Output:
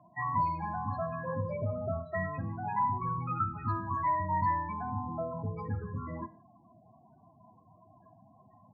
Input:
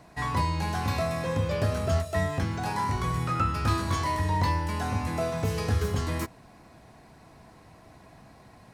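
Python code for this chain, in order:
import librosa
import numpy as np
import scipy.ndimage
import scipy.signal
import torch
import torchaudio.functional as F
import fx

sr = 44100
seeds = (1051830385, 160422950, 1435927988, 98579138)

y = fx.spec_topn(x, sr, count=16)
y = fx.cabinet(y, sr, low_hz=110.0, low_slope=24, high_hz=3000.0, hz=(150.0, 310.0, 450.0, 1000.0, 1900.0), db=(-5, -7, -9, 5, 3))
y = fx.rev_gated(y, sr, seeds[0], gate_ms=200, shape='falling', drr_db=11.5)
y = y * librosa.db_to_amplitude(-3.5)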